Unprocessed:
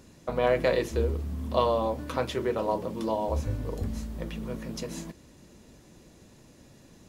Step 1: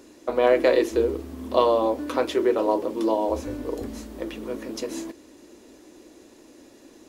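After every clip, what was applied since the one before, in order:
low shelf with overshoot 220 Hz −11 dB, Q 3
level +3.5 dB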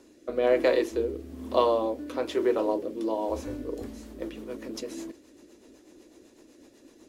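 rotating-speaker cabinet horn 1.1 Hz, later 8 Hz, at 0:03.48
level −3 dB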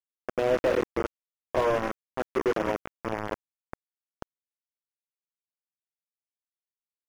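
bit reduction 4 bits
slew-rate limiting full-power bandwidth 91 Hz
level −1.5 dB

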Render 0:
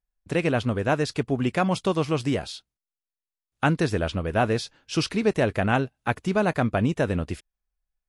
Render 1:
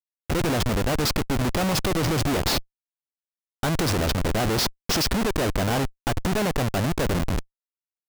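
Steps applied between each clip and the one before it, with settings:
high shelf with overshoot 3,500 Hz +9 dB, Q 1.5
comparator with hysteresis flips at −28.5 dBFS
level +3 dB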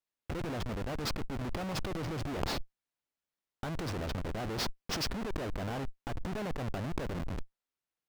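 high-shelf EQ 5,100 Hz −11.5 dB
compressor whose output falls as the input rises −33 dBFS, ratio −1
level −2 dB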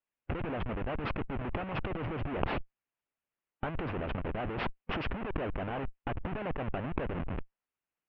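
Chebyshev low-pass filter 2,800 Hz, order 4
harmonic and percussive parts rebalanced percussive +8 dB
level −3 dB

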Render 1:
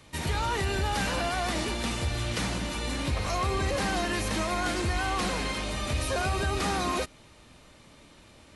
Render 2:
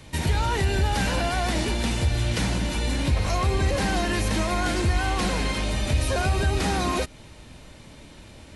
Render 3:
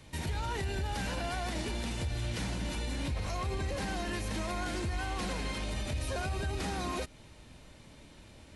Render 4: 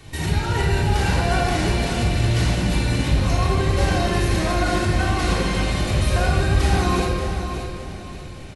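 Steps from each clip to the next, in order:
low-shelf EQ 180 Hz +6.5 dB; notch filter 1,200 Hz, Q 9.8; in parallel at −0.5 dB: downward compressor, threshold −32 dBFS, peak gain reduction 12.5 dB
brickwall limiter −18.5 dBFS, peak gain reduction 6 dB; level −8 dB
repeating echo 580 ms, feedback 33%, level −9 dB; rectangular room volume 1,900 cubic metres, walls mixed, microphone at 3.5 metres; level +7 dB

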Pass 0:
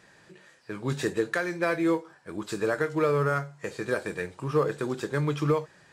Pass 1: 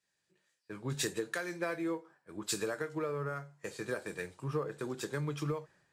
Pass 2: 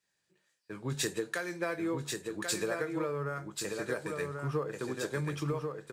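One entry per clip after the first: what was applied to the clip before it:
downward compressor 6 to 1, threshold −29 dBFS, peak gain reduction 10 dB; high-shelf EQ 6,700 Hz +6.5 dB; multiband upward and downward expander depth 100%; level −4 dB
single-tap delay 1,088 ms −4.5 dB; level +1.5 dB

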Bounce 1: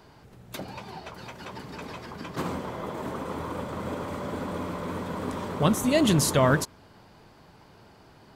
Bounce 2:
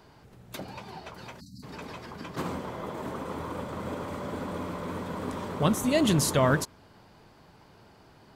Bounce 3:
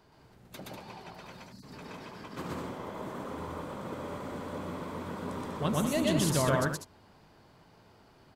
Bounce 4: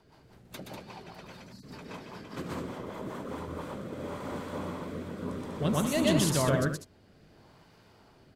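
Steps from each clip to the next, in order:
time-frequency box erased 0:01.40–0:01.63, 290–3,800 Hz; level −2 dB
loudspeakers that aren't time-aligned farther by 42 metres 0 dB, 67 metres −7 dB; level −7 dB
rotating-speaker cabinet horn 5 Hz, later 0.6 Hz, at 0:03.16; level +3 dB

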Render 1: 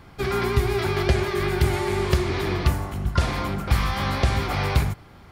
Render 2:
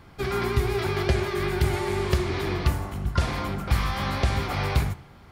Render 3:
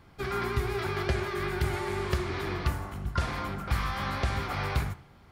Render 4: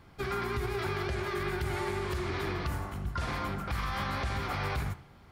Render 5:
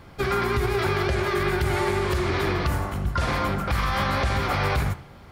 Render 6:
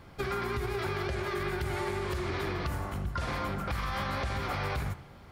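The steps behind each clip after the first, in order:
flanger 0.9 Hz, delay 8.8 ms, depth 9.9 ms, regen −86%; level +2 dB
dynamic equaliser 1,400 Hz, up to +5 dB, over −46 dBFS, Q 1.3; level −6 dB
brickwall limiter −24 dBFS, peak gain reduction 9.5 dB
parametric band 550 Hz +4.5 dB 0.34 octaves; level +9 dB
downward compressor 2.5 to 1, threshold −26 dBFS, peak gain reduction 5 dB; level −5 dB

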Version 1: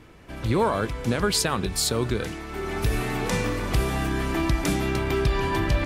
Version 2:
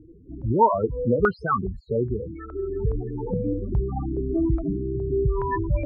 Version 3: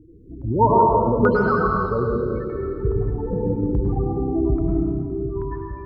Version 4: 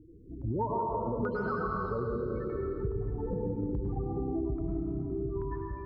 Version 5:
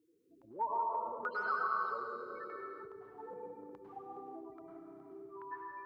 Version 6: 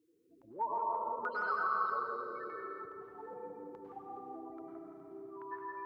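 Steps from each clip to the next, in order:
spectral peaks only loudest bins 8; low-pass on a step sequencer 2.4 Hz 390–1,600 Hz
fade-out on the ending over 1.29 s; dense smooth reverb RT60 2.1 s, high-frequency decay 1×, pre-delay 90 ms, DRR −3 dB
downward compressor, threshold −23 dBFS, peak gain reduction 12 dB; level −6 dB
high-pass filter 1,100 Hz 12 dB per octave; level +3.5 dB
bucket-brigade delay 168 ms, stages 2,048, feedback 50%, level −5.5 dB

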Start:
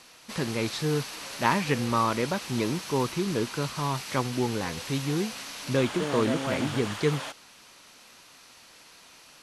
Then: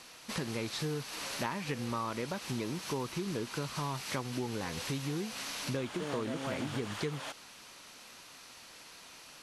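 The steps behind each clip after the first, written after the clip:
downward compressor 6 to 1, threshold −33 dBFS, peak gain reduction 14.5 dB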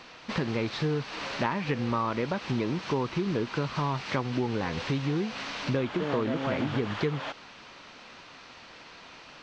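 Gaussian smoothing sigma 2 samples
level +7.5 dB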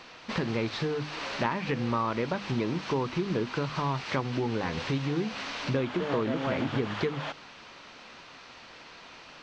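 mains-hum notches 50/100/150/200/250/300 Hz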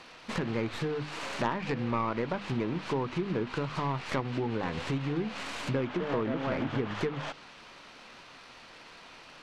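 stylus tracing distortion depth 0.21 ms
treble cut that deepens with the level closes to 2,900 Hz, closed at −25 dBFS
level −2 dB

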